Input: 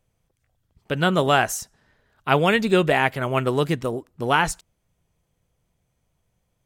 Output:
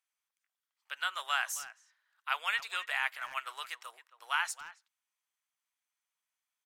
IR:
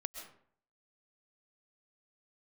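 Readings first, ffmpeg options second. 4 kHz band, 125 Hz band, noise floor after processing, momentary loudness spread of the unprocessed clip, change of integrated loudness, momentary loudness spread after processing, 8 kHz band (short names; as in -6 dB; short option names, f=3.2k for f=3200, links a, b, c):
-9.0 dB, under -40 dB, under -85 dBFS, 12 LU, -13.5 dB, 14 LU, -9.0 dB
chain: -filter_complex "[0:a]highpass=f=1.1k:w=0.5412,highpass=f=1.1k:w=1.3066,asplit=2[a][b];[b]adelay=270,highpass=300,lowpass=3.4k,asoftclip=type=hard:threshold=-14.5dB,volume=-15dB[c];[a][c]amix=inputs=2:normalize=0,volume=-9dB"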